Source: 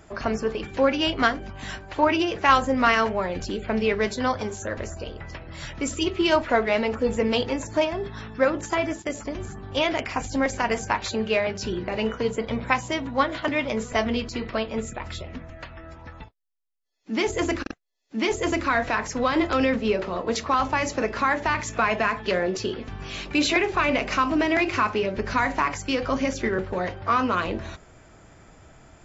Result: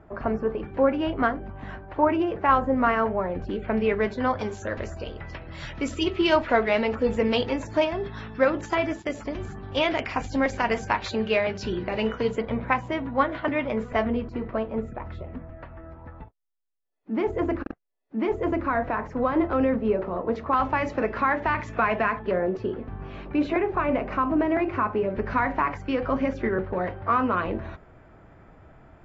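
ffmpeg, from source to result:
-af "asetnsamples=n=441:p=0,asendcmd='3.49 lowpass f 2100;4.39 lowpass f 4100;12.42 lowpass f 2000;14.08 lowpass f 1200;20.53 lowpass f 2100;22.19 lowpass f 1200;25.1 lowpass f 1800',lowpass=1300"

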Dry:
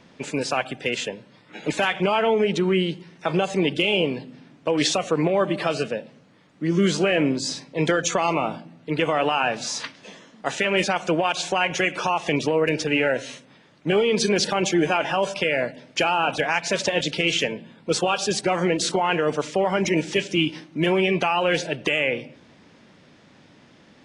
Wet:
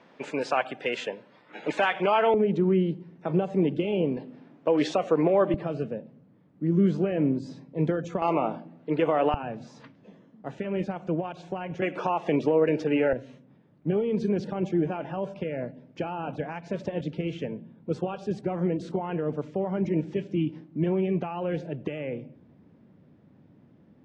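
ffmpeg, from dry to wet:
-af "asetnsamples=n=441:p=0,asendcmd='2.34 bandpass f 190;4.17 bandpass f 470;5.54 bandpass f 140;8.22 bandpass f 410;9.34 bandpass f 110;11.82 bandpass f 350;13.13 bandpass f 120',bandpass=f=830:t=q:w=0.57:csg=0"

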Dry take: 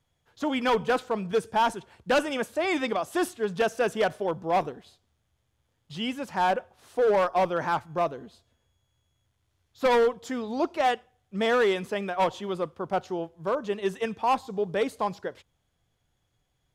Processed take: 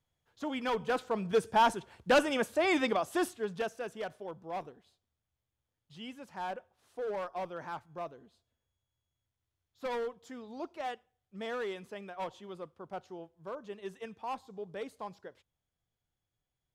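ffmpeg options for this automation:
-af "volume=0.841,afade=t=in:st=0.78:d=0.7:silence=0.446684,afade=t=out:st=2.84:d=0.98:silence=0.237137"

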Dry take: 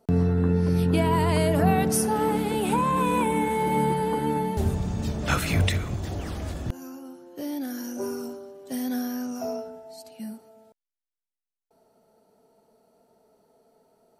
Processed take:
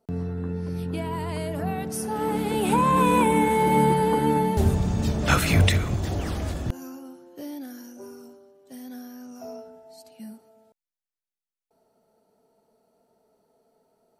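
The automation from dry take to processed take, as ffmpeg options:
-af "volume=3.55,afade=t=in:st=1.94:d=1.02:silence=0.251189,afade=t=out:st=6.31:d=1.2:silence=0.375837,afade=t=out:st=7.51:d=0.49:silence=0.473151,afade=t=in:st=9.18:d=0.8:silence=0.446684"

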